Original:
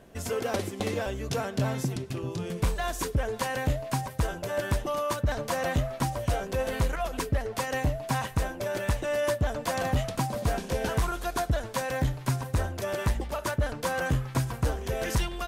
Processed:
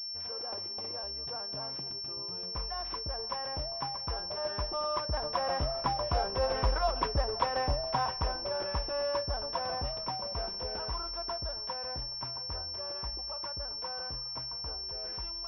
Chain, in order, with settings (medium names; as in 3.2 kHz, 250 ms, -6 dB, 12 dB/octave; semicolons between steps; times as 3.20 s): Doppler pass-by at 6.90 s, 10 m/s, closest 13 m; ten-band graphic EQ 125 Hz -8 dB, 250 Hz -7 dB, 1 kHz +7 dB, 2 kHz -7 dB; on a send at -22 dB: reverberation RT60 2.7 s, pre-delay 105 ms; on the sum: class-D stage that switches slowly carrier 5.4 kHz